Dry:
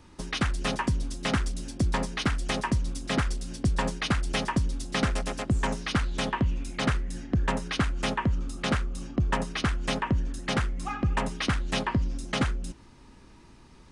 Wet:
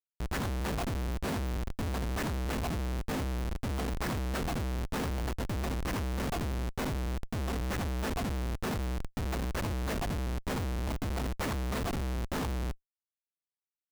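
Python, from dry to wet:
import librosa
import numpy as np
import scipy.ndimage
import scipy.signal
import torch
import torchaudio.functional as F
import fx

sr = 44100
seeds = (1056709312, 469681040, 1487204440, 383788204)

y = fx.partial_stretch(x, sr, pct=78)
y = fx.schmitt(y, sr, flips_db=-30.5)
y = y * 10.0 ** (-2.5 / 20.0)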